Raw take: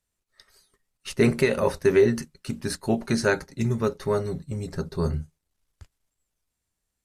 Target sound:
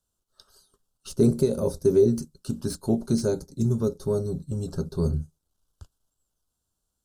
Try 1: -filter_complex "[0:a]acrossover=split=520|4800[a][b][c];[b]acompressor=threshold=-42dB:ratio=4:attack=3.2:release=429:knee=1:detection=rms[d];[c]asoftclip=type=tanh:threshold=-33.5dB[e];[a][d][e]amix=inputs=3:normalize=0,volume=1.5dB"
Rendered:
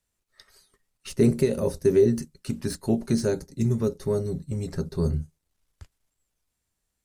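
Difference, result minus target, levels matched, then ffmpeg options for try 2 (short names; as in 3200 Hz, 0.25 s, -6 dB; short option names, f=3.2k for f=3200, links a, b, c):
2000 Hz band +8.5 dB
-filter_complex "[0:a]acrossover=split=520|4800[a][b][c];[b]acompressor=threshold=-42dB:ratio=4:attack=3.2:release=429:knee=1:detection=rms,asuperstop=centerf=2100:order=8:qfactor=1.7[d];[c]asoftclip=type=tanh:threshold=-33.5dB[e];[a][d][e]amix=inputs=3:normalize=0,volume=1.5dB"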